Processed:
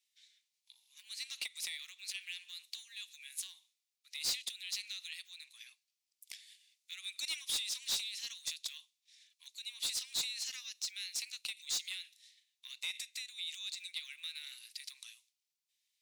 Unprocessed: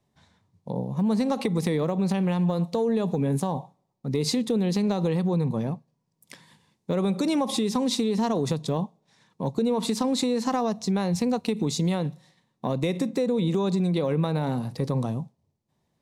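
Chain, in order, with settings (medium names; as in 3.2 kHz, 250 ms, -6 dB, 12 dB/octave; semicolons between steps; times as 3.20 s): steep high-pass 2.3 kHz 36 dB/octave; saturation -32 dBFS, distortion -8 dB; trim +2 dB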